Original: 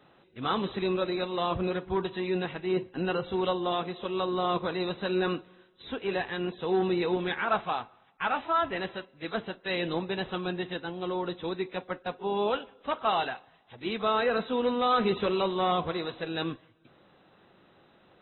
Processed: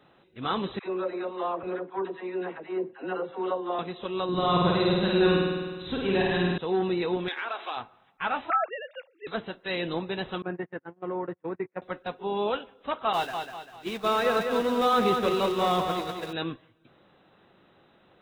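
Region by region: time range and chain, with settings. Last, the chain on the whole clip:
0.79–3.79 s: three-band isolator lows -23 dB, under 260 Hz, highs -19 dB, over 2.1 kHz + phase dispersion lows, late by 71 ms, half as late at 600 Hz
4.29–6.58 s: tone controls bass +9 dB, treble +7 dB + flutter echo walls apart 8.8 m, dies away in 1.5 s
7.28–7.77 s: treble shelf 2.1 kHz +11.5 dB + compression, threshold -29 dBFS + brick-wall FIR high-pass 240 Hz
8.50–9.27 s: formants replaced by sine waves + high-pass 200 Hz
10.42–11.82 s: gate -35 dBFS, range -32 dB + elliptic band-pass 100–2000 Hz
13.13–16.33 s: jump at every zero crossing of -34 dBFS + expander -26 dBFS + feedback delay 197 ms, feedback 42%, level -5.5 dB
whole clip: none

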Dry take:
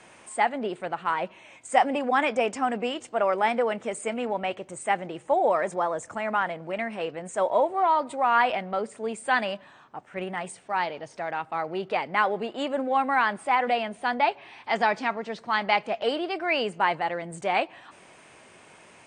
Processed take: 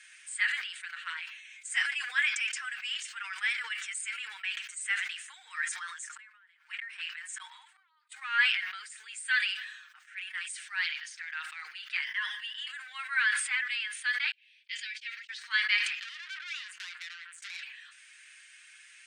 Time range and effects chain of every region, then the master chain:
6.16–8.12 s: resonant low shelf 610 Hz -11.5 dB, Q 3 + inverted gate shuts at -21 dBFS, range -34 dB
12.03–12.67 s: rippled EQ curve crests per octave 1.2, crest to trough 14 dB + compression, threshold -27 dBFS
14.31–15.29 s: gate -35 dBFS, range -48 dB + ladder high-pass 2.2 kHz, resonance 35%
16.00–17.63 s: compression 16:1, threshold -29 dBFS + transformer saturation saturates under 3.7 kHz
whole clip: elliptic high-pass 1.6 kHz, stop band 60 dB; comb 6.5 ms; decay stretcher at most 59 dB/s

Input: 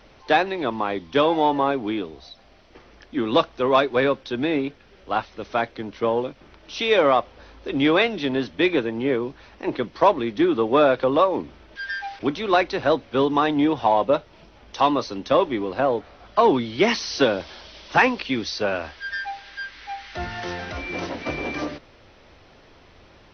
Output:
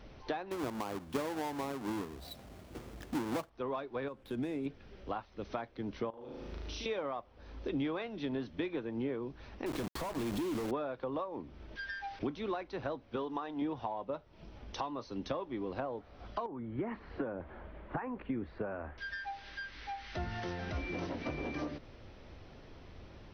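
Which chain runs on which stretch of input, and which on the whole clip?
0.51–3.50 s: square wave that keeps the level + high-pass 66 Hz
4.08–4.66 s: median filter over 9 samples + compression 2:1, threshold -30 dBFS
6.10–6.86 s: treble shelf 4.9 kHz +7 dB + compression 10:1, threshold -36 dBFS + flutter echo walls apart 6.5 m, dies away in 1.1 s
9.66–10.71 s: band-stop 2 kHz, Q 16 + compression 12:1, threshold -29 dBFS + companded quantiser 2-bit
13.16–13.62 s: peaking EQ 110 Hz -10.5 dB 2.2 oct + band-stop 2.2 kHz, Q 19
16.46–18.98 s: low-pass 1.8 kHz 24 dB/octave + compression 2.5:1, threshold -24 dBFS
whole clip: dynamic bell 1 kHz, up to +6 dB, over -32 dBFS, Q 1; compression 6:1, threshold -32 dBFS; bass shelf 380 Hz +10 dB; trim -7.5 dB

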